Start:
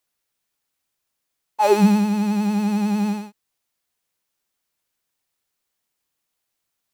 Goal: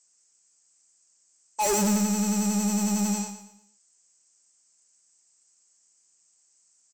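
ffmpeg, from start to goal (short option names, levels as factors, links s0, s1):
-af "afftfilt=real='re*between(b*sr/4096,120,8300)':imag='im*between(b*sr/4096,120,8300)':win_size=4096:overlap=0.75,adynamicequalizer=threshold=0.00316:dfrequency=3300:dqfactor=3.9:tfrequency=3300:tqfactor=3.9:attack=5:release=100:ratio=0.375:range=3:mode=boostabove:tftype=bell,aexciter=amount=11.9:drive=7.2:freq=5600,asoftclip=type=tanh:threshold=0.0794,aecho=1:1:117|234|351|468:0.316|0.114|0.041|0.0148"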